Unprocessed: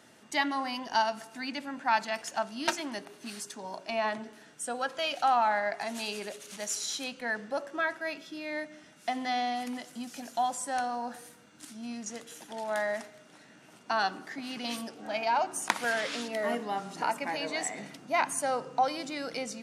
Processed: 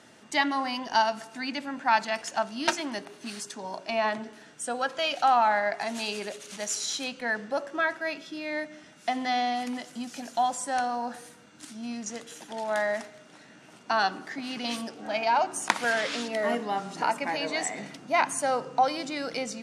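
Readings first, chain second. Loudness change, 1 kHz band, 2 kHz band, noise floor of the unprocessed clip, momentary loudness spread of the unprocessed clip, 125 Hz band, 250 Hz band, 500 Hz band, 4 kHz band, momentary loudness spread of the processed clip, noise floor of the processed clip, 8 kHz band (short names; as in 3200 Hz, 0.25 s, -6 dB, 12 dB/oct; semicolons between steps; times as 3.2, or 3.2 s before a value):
+3.5 dB, +3.5 dB, +3.5 dB, -57 dBFS, 12 LU, n/a, +3.5 dB, +3.5 dB, +3.5 dB, 12 LU, -53 dBFS, +2.5 dB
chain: LPF 9500 Hz 12 dB/oct; gain +3.5 dB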